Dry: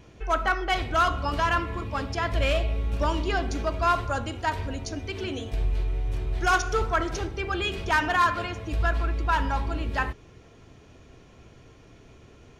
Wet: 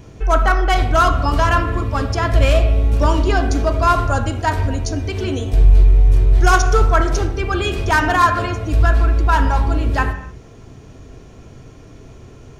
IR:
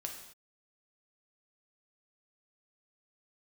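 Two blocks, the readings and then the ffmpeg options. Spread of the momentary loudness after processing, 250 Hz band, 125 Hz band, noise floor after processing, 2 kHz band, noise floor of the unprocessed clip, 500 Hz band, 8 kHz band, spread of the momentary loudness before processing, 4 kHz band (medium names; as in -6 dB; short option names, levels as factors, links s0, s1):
7 LU, +10.0 dB, +13.5 dB, -41 dBFS, +6.5 dB, -52 dBFS, +9.5 dB, +10.0 dB, 8 LU, +5.5 dB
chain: -filter_complex "[0:a]bass=f=250:g=1,treble=f=4000:g=8,asplit=2[s0][s1];[1:a]atrim=start_sample=2205,lowpass=2100,lowshelf=f=350:g=6[s2];[s1][s2]afir=irnorm=-1:irlink=0,volume=1.06[s3];[s0][s3]amix=inputs=2:normalize=0,volume=1.5"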